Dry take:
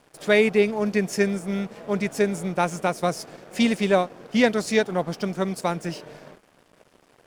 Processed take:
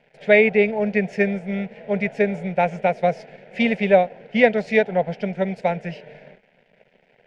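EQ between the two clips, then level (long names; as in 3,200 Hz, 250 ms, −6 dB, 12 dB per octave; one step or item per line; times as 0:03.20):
low-pass with resonance 2,200 Hz, resonance Q 2.5
phaser with its sweep stopped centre 310 Hz, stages 6
dynamic equaliser 740 Hz, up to +6 dB, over −35 dBFS, Q 0.86
+1.0 dB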